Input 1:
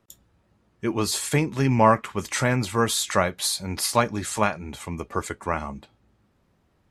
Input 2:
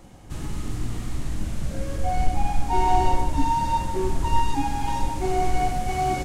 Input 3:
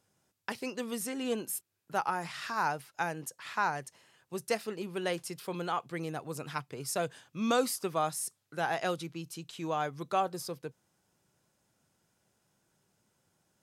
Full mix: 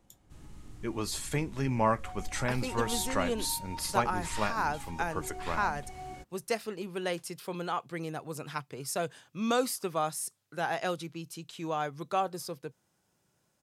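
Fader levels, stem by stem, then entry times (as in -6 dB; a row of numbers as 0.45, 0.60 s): -9.5, -19.5, 0.0 dB; 0.00, 0.00, 2.00 s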